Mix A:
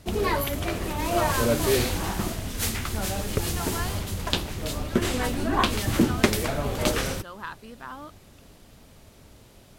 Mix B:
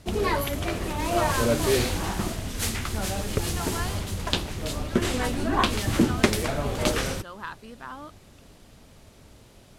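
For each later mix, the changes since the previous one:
master: add low-pass filter 12,000 Hz 12 dB per octave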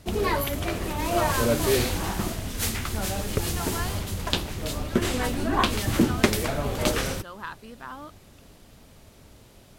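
master: remove low-pass filter 12,000 Hz 12 dB per octave

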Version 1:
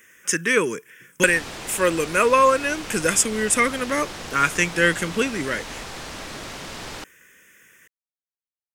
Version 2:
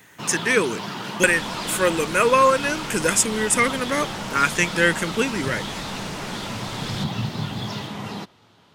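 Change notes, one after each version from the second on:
first sound: unmuted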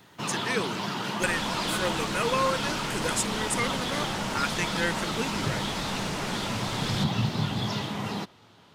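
speech −10.5 dB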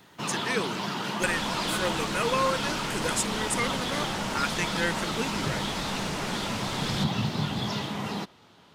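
first sound: add parametric band 110 Hz −6 dB 0.27 octaves

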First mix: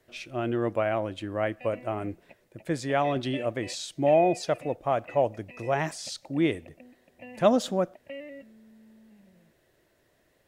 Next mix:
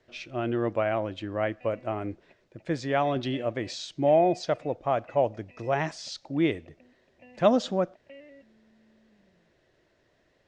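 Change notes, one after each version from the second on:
background −8.0 dB
master: add low-pass filter 6,200 Hz 24 dB per octave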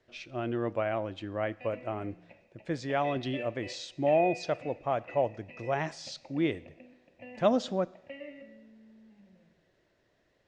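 speech −4.5 dB
reverb: on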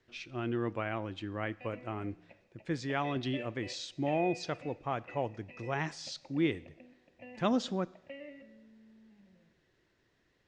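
speech: add parametric band 610 Hz −10.5 dB 0.56 octaves
background: send −6.5 dB

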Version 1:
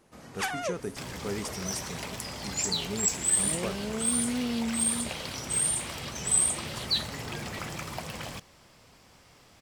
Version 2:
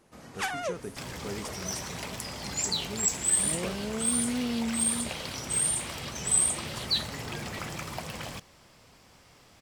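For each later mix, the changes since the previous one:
speech −4.0 dB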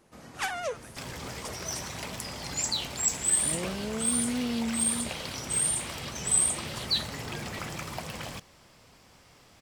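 speech: add linear-phase brick-wall high-pass 560 Hz

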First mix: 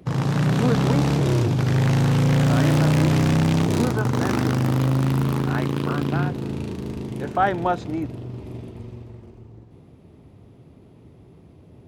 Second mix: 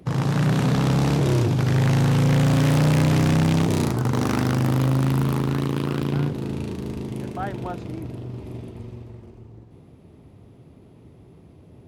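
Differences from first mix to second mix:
speech −11.5 dB
master: add parametric band 11,000 Hz +2.5 dB 0.64 octaves

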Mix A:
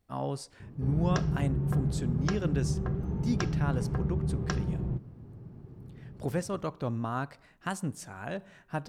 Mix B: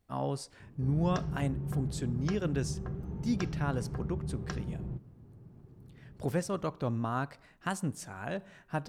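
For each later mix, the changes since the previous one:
background −6.5 dB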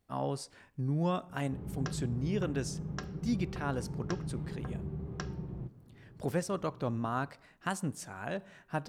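background: entry +0.70 s
master: add low-shelf EQ 110 Hz −5.5 dB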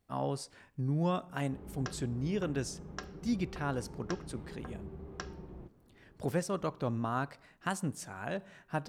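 background: add parametric band 130 Hz −13.5 dB 1.2 octaves

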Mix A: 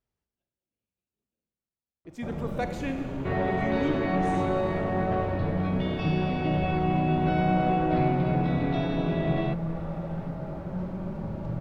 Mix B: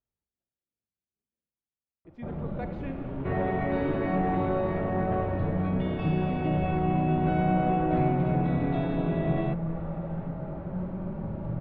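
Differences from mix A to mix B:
speech −6.0 dB
master: add high-frequency loss of the air 360 metres

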